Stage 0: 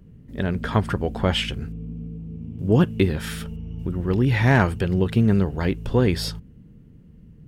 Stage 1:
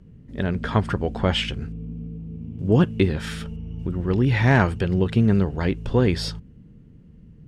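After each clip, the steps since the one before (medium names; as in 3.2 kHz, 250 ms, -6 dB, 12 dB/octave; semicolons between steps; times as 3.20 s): low-pass 7.8 kHz 12 dB/octave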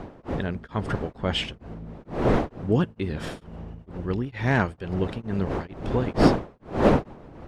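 wind noise 500 Hz -22 dBFS; harmonic-percussive split harmonic -4 dB; tremolo of two beating tones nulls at 2.2 Hz; trim -2 dB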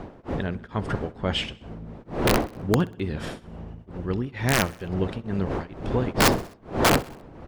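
integer overflow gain 11 dB; feedback delay 64 ms, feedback 56%, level -21 dB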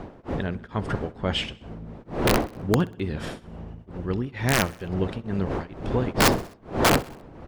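no audible change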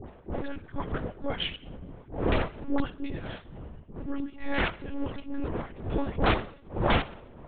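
phase dispersion highs, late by 63 ms, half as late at 910 Hz; on a send at -22 dB: reverberation RT60 1.0 s, pre-delay 3 ms; on the sum: monotone LPC vocoder at 8 kHz 280 Hz; trim -4 dB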